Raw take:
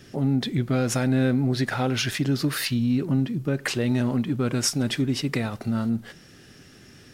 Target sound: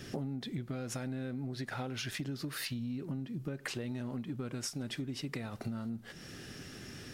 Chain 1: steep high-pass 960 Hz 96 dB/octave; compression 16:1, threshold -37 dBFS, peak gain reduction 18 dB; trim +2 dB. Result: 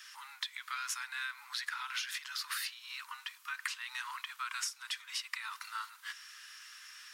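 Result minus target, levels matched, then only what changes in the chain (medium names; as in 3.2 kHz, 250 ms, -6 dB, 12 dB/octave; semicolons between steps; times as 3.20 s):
1 kHz band +6.5 dB
remove: steep high-pass 960 Hz 96 dB/octave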